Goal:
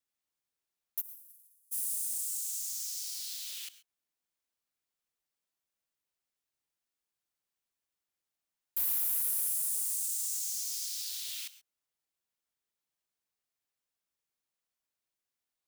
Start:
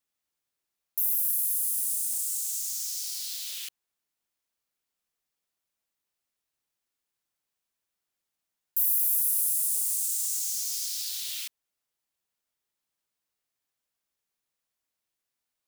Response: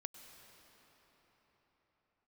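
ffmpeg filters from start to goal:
-filter_complex "[0:a]asplit=3[link_01][link_02][link_03];[link_01]afade=type=out:start_time=1:duration=0.02[link_04];[link_02]agate=range=-37dB:threshold=-22dB:ratio=16:detection=peak,afade=type=in:start_time=1:duration=0.02,afade=type=out:start_time=1.71:duration=0.02[link_05];[link_03]afade=type=in:start_time=1.71:duration=0.02[link_06];[link_04][link_05][link_06]amix=inputs=3:normalize=0,equalizer=frequency=12000:width=5.9:gain=-2.5,asoftclip=type=hard:threshold=-20.5dB[link_07];[1:a]atrim=start_sample=2205,atrim=end_sample=6174[link_08];[link_07][link_08]afir=irnorm=-1:irlink=0"

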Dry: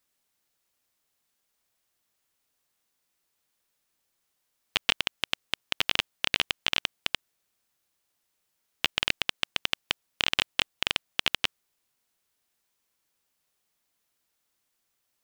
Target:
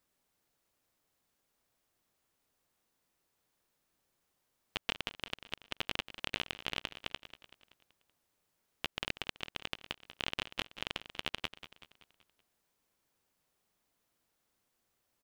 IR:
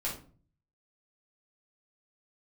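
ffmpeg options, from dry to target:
-filter_complex "[0:a]tiltshelf=frequency=1300:gain=4.5,alimiter=limit=-14.5dB:level=0:latency=1:release=186,asplit=2[link_01][link_02];[link_02]aecho=0:1:190|380|570|760|950:0.211|0.104|0.0507|0.0249|0.0122[link_03];[link_01][link_03]amix=inputs=2:normalize=0"

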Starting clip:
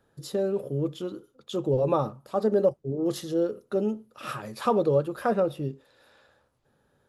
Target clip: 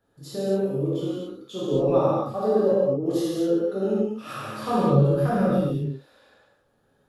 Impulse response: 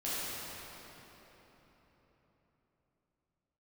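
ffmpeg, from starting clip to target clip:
-filter_complex "[0:a]asplit=3[link_01][link_02][link_03];[link_01]afade=type=out:start_time=4.68:duration=0.02[link_04];[link_02]asubboost=boost=7:cutoff=150,afade=type=in:start_time=4.68:duration=0.02,afade=type=out:start_time=5.64:duration=0.02[link_05];[link_03]afade=type=in:start_time=5.64:duration=0.02[link_06];[link_04][link_05][link_06]amix=inputs=3:normalize=0[link_07];[1:a]atrim=start_sample=2205,afade=type=out:start_time=0.33:duration=0.01,atrim=end_sample=14994[link_08];[link_07][link_08]afir=irnorm=-1:irlink=0,volume=-2dB"

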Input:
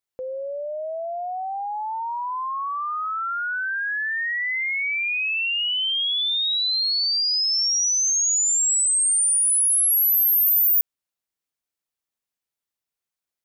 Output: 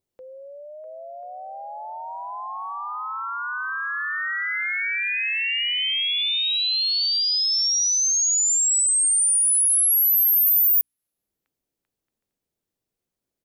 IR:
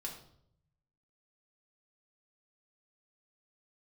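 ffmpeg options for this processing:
-filter_complex "[0:a]tiltshelf=frequency=840:gain=-8,bandreject=frequency=60:width_type=h:width=6,bandreject=frequency=120:width_type=h:width=6,bandreject=frequency=180:width_type=h:width=6,bandreject=frequency=240:width_type=h:width=6,bandreject=frequency=300:width_type=h:width=6,acrossover=split=460|2400[link_01][link_02][link_03];[link_01]acompressor=mode=upward:threshold=-58dB:ratio=2.5[link_04];[link_02]aecho=1:1:650|1040|1274|1414|1499:0.631|0.398|0.251|0.158|0.1[link_05];[link_04][link_05][link_03]amix=inputs=3:normalize=0,volume=-7.5dB"

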